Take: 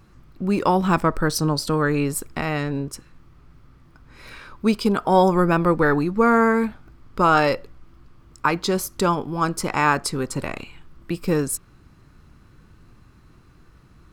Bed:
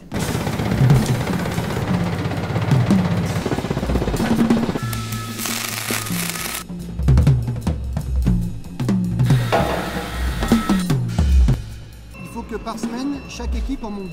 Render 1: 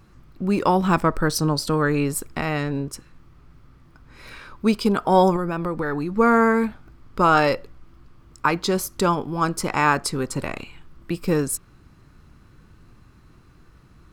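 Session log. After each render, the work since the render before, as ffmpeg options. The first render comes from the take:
-filter_complex "[0:a]asettb=1/sr,asplit=3[s0][s1][s2];[s0]atrim=end=5.364[s3];[s1]atrim=start=5.36:end=6.17,asetpts=PTS-STARTPTS,afade=t=in:d=0.004:c=qsin,afade=t=out:st=0.806:d=0.004:c=qsin,acompressor=threshold=0.0708:ratio=3:attack=3.2:release=140:knee=1:detection=peak[s4];[s2]atrim=start=6.166[s5];[s3][s4]acrossfade=d=0.004:c1=hsin:c2=qsin[s6];[s6][s5]acrossfade=d=0.004:c1=qsin:c2=hsin"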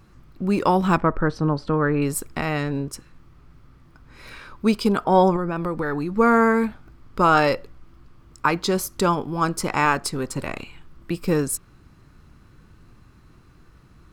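-filter_complex "[0:a]asettb=1/sr,asplit=3[s0][s1][s2];[s0]atrim=end=0.974[s3];[s1]atrim=start=0.97:end=2.02,asetpts=PTS-STARTPTS,afade=t=in:d=0.004:c=qsin,afade=t=out:st=1.046:d=0.004:c=qsin,lowpass=2000[s4];[s2]atrim=start=2.016[s5];[s3][s4]acrossfade=d=0.004:c1=hsin:c2=qsin[s6];[s6][s5]acrossfade=d=0.004:c1=qsin:c2=hsin,asettb=1/sr,asplit=3[s7][s8][s9];[s7]atrim=end=5.044[s10];[s8]atrim=start=5.04:end=5.56,asetpts=PTS-STARTPTS,afade=t=in:d=0.004:c=qsin,afade=t=out:st=0.516:d=0.004:c=qsin,lowpass=f=3400:p=1[s11];[s9]atrim=start=5.556[s12];[s10][s11]acrossfade=d=0.004:c1=hsin:c2=qsin[s13];[s13][s12]acrossfade=d=0.004:c1=qsin:c2=hsin,asettb=1/sr,asplit=3[s14][s15][s16];[s14]atrim=end=9.854[s17];[s15]atrim=start=9.85:end=10.47,asetpts=PTS-STARTPTS,afade=t=in:d=0.004:c=qsin,afade=t=out:st=0.616:d=0.004:c=qsin,aeval=exprs='if(lt(val(0),0),0.708*val(0),val(0))':c=same[s18];[s16]atrim=start=10.466[s19];[s17][s18]acrossfade=d=0.004:c1=hsin:c2=qsin[s20];[s20][s19]acrossfade=d=0.004:c1=qsin:c2=hsin"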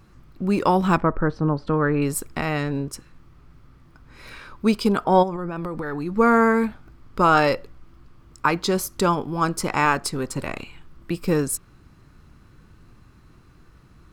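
-filter_complex "[0:a]asettb=1/sr,asplit=3[s0][s1][s2];[s0]atrim=end=1.034[s3];[s1]atrim=start=1.03:end=1.67,asetpts=PTS-STARTPTS,afade=t=in:d=0.004:c=qsin,afade=t=out:st=0.636:d=0.004:c=qsin,lowpass=f=2000:p=1[s4];[s2]atrim=start=1.666[s5];[s3][s4]acrossfade=d=0.004:c1=hsin:c2=qsin[s6];[s6][s5]acrossfade=d=0.004:c1=qsin:c2=hsin,asplit=3[s7][s8][s9];[s7]afade=t=out:st=5.22:d=0.02[s10];[s8]acompressor=threshold=0.0631:ratio=5:attack=3.2:release=140:knee=1:detection=peak,afade=t=in:st=5.22:d=0.02,afade=t=out:st=6.05:d=0.02[s11];[s9]afade=t=in:st=6.05:d=0.02[s12];[s10][s11][s12]amix=inputs=3:normalize=0"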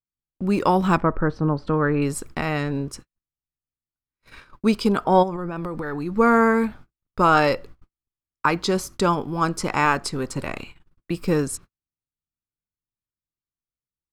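-filter_complex "[0:a]acrossover=split=9400[s0][s1];[s1]acompressor=threshold=0.00398:ratio=4:attack=1:release=60[s2];[s0][s2]amix=inputs=2:normalize=0,agate=range=0.00355:threshold=0.0112:ratio=16:detection=peak"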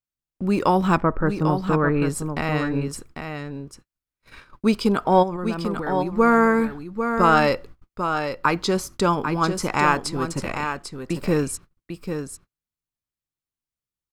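-af "aecho=1:1:796:0.422"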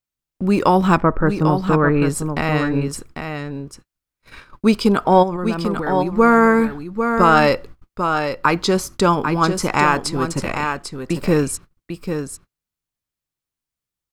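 -af "volume=1.68,alimiter=limit=0.708:level=0:latency=1"

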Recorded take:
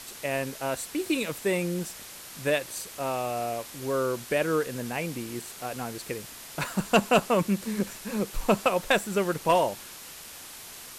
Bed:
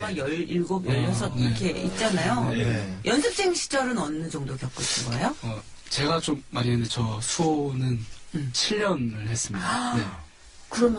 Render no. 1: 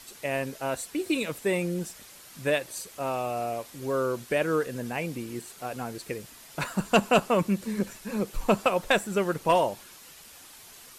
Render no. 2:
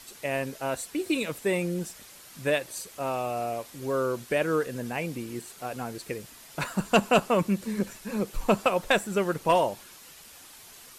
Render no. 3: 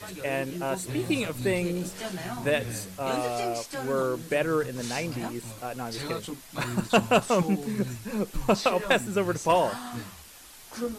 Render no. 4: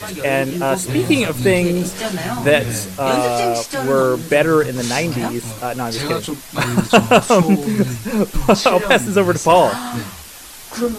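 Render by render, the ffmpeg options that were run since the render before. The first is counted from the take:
-af "afftdn=nr=7:nf=-44"
-af anull
-filter_complex "[1:a]volume=0.282[s0];[0:a][s0]amix=inputs=2:normalize=0"
-af "volume=3.98,alimiter=limit=0.891:level=0:latency=1"

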